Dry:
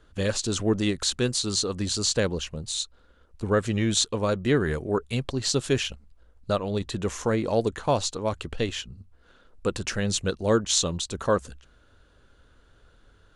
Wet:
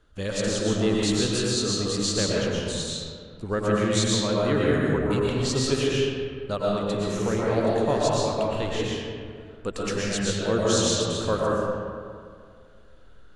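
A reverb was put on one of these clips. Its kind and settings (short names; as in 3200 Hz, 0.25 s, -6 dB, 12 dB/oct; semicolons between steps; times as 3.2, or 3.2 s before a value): digital reverb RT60 2.2 s, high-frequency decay 0.5×, pre-delay 80 ms, DRR -5.5 dB; gain -4.5 dB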